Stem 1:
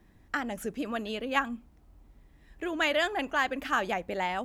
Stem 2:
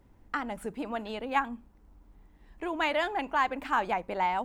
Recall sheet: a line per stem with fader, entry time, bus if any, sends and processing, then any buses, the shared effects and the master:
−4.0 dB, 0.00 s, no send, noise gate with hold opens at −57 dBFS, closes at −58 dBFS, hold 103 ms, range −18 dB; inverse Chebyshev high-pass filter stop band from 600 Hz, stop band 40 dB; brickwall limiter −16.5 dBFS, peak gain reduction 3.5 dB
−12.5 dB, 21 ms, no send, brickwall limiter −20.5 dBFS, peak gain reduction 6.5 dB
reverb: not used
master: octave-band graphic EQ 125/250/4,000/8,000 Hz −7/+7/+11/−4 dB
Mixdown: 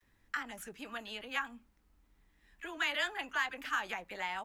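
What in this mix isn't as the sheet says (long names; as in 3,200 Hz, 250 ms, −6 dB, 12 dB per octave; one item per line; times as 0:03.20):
stem 2: polarity flipped
master: missing octave-band graphic EQ 125/250/4,000/8,000 Hz −7/+7/+11/−4 dB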